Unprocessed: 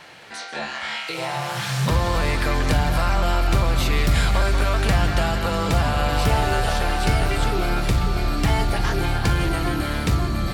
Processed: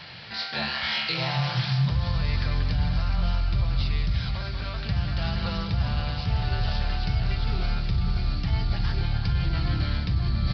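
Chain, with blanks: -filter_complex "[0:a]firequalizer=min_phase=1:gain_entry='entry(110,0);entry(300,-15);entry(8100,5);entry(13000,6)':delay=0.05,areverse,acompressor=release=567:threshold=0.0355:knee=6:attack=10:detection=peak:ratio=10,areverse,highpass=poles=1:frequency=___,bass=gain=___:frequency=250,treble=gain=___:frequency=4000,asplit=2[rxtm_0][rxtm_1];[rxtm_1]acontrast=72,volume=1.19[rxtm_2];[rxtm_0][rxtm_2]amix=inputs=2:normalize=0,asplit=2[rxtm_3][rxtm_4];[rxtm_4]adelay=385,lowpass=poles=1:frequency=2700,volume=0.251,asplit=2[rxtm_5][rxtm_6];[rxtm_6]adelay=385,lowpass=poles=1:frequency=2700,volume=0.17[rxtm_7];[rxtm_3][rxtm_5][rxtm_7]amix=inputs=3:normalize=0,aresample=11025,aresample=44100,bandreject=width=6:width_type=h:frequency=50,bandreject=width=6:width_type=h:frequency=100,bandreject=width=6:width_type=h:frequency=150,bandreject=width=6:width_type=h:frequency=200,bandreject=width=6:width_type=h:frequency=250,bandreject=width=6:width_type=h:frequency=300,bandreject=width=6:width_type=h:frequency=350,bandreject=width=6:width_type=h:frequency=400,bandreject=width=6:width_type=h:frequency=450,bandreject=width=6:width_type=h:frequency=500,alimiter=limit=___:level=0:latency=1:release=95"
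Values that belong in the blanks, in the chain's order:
74, 3, 2, 0.168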